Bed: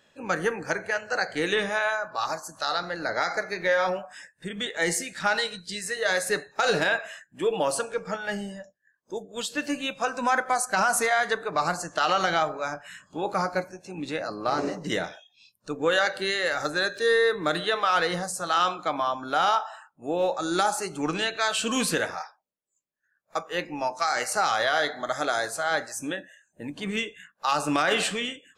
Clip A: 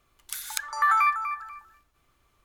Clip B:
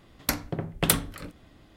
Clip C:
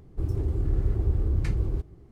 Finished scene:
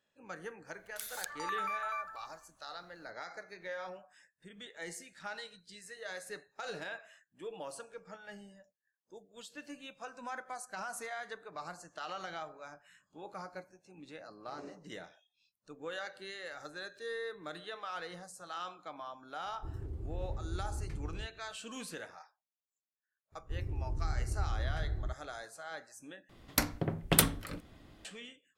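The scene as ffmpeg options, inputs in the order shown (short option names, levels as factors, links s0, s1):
-filter_complex "[3:a]asplit=2[s0][s1];[0:a]volume=0.119[s2];[1:a]acompressor=threshold=0.0501:ratio=6:attack=3.2:release=140:knee=1:detection=peak[s3];[s1]lowshelf=f=130:g=6.5[s4];[s2]asplit=2[s5][s6];[s5]atrim=end=26.294[s7];[2:a]atrim=end=1.76,asetpts=PTS-STARTPTS,volume=0.75[s8];[s6]atrim=start=28.046[s9];[s3]atrim=end=2.44,asetpts=PTS-STARTPTS,volume=0.422,afade=t=in:d=0.004:c=hsin,afade=t=out:st=2.436:d=0.004:c=hsin,adelay=670[s10];[s0]atrim=end=2.11,asetpts=PTS-STARTPTS,volume=0.188,afade=t=in:d=0.004:c=hsin,afade=t=out:st=2.106:d=0.004:c=hsin,adelay=19450[s11];[s4]atrim=end=2.11,asetpts=PTS-STARTPTS,volume=0.178,afade=t=in:d=0.004:c=hsin,afade=t=out:st=2.106:d=0.004:c=hsin,adelay=23320[s12];[s7][s8]acrossfade=d=0.004:c1=hsin:c2=hsin[s13];[s13][s9]acrossfade=d=0.004:c1=hsin:c2=hsin[s14];[s14][s10][s11][s12]amix=inputs=4:normalize=0"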